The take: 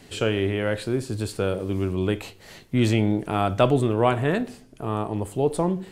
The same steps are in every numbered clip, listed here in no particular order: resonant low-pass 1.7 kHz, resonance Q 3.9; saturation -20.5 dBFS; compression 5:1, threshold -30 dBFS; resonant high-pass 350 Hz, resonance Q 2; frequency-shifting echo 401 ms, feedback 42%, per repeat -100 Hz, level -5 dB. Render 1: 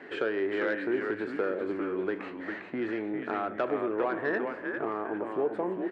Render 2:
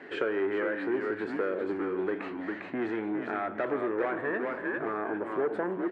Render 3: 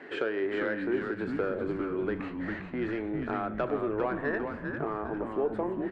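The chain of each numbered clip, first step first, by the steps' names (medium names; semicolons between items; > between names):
compression > frequency-shifting echo > resonant low-pass > saturation > resonant high-pass; saturation > frequency-shifting echo > resonant low-pass > compression > resonant high-pass; resonant low-pass > compression > saturation > resonant high-pass > frequency-shifting echo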